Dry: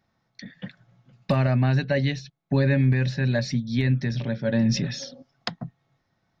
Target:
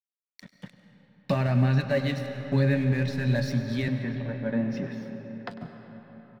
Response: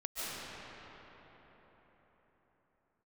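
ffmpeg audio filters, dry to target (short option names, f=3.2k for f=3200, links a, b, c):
-filter_complex "[0:a]flanger=delay=6.7:depth=8.7:regen=62:speed=0.58:shape=triangular,aeval=exprs='sgn(val(0))*max(abs(val(0))-0.00501,0)':c=same,asettb=1/sr,asplit=3[a][b][c];[a]atrim=end=3.884[d];[b]atrim=start=3.88:end=5.51,asetpts=PTS-STARTPTS,afade=t=in:d=0.004:c=qsin,afade=t=out:st=1.626:d=0.004:c=qsin,acrossover=split=160 2300:gain=0.224 1 0.0891[e][f][g];[e][f][g]amix=inputs=3:normalize=0[h];[c]atrim=start=5.506[i];[d][h]acrossfade=d=0.004:c1=hsin:c2=qsin[j];[j][i]acrossfade=d=0.004:c1=qsin:c2=hsin,aecho=1:1:99:0.15,asplit=2[k][l];[1:a]atrim=start_sample=2205[m];[l][m]afir=irnorm=-1:irlink=0,volume=-10.5dB[n];[k][n]amix=inputs=2:normalize=0"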